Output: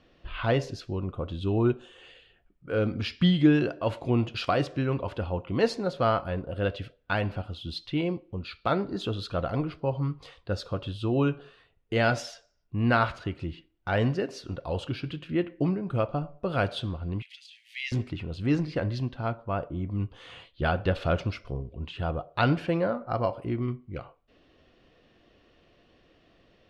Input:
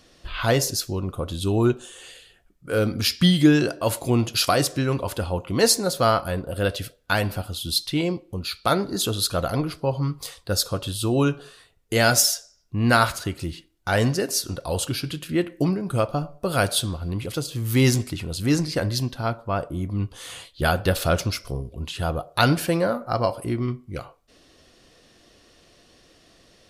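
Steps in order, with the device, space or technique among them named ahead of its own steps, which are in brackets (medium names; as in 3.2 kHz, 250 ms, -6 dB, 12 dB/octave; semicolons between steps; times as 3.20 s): 17.22–17.92 s: steep high-pass 1.9 kHz 72 dB/octave; phone in a pocket (low-pass 3.4 kHz 12 dB/octave; treble shelf 2.1 kHz -8.5 dB); peaking EQ 2.8 kHz +5.5 dB 0.77 oct; trim -4 dB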